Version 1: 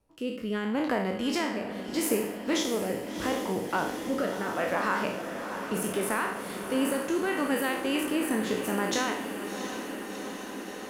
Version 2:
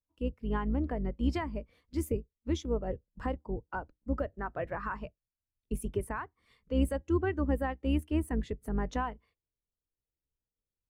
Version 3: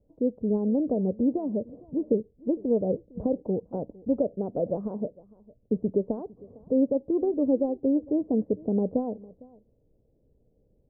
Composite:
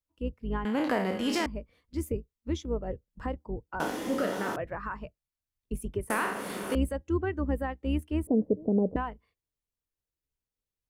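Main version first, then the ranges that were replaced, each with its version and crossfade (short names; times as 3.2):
2
0.65–1.46 from 1
3.8–4.56 from 1
6.1–6.75 from 1
8.27–8.96 from 3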